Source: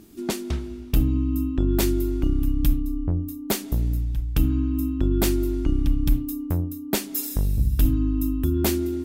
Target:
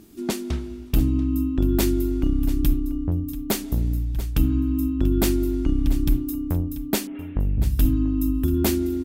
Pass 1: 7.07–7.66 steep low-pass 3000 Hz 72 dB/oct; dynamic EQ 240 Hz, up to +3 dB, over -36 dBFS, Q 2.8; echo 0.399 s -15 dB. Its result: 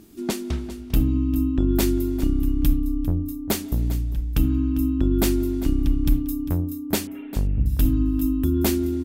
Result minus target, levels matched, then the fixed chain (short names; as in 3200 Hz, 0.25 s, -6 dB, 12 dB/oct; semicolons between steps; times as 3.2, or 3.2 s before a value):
echo 0.288 s early
7.07–7.66 steep low-pass 3000 Hz 72 dB/oct; dynamic EQ 240 Hz, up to +3 dB, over -36 dBFS, Q 2.8; echo 0.687 s -15 dB